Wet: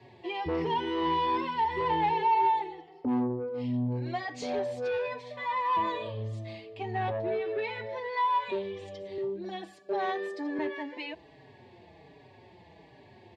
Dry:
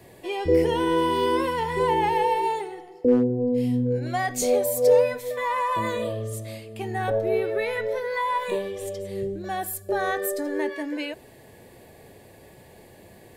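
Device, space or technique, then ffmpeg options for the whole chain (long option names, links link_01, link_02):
barber-pole flanger into a guitar amplifier: -filter_complex "[0:a]asplit=2[link_01][link_02];[link_02]adelay=4.9,afreqshift=-1.3[link_03];[link_01][link_03]amix=inputs=2:normalize=1,asoftclip=type=tanh:threshold=-21.5dB,highpass=85,equalizer=frequency=220:width_type=q:width=4:gain=-4,equalizer=frequency=520:width_type=q:width=4:gain=-8,equalizer=frequency=920:width_type=q:width=4:gain=5,equalizer=frequency=1400:width_type=q:width=4:gain=-9,lowpass=frequency=4500:width=0.5412,lowpass=frequency=4500:width=1.3066,asettb=1/sr,asplit=3[link_04][link_05][link_06];[link_04]atrim=end=9.184[link_07];[link_05]atrim=start=9.18:end=10.59,asetpts=PTS-STARTPTS,afade=type=in:duration=0.004:curve=qsin,afade=type=out:start_time=1.406:duration=0.004:curve=qsin,highpass=frequency=170:width=0.5412,highpass=frequency=170:width=1.3066[link_08];[link_06]atrim=start=10.586[link_09];[link_07][link_08]acrossfade=duration=0.004:curve1=hsin:curve2=qsin[link_10];[link_10][link_09]acrossfade=duration=0.004:curve1=qsin:curve2=hsin"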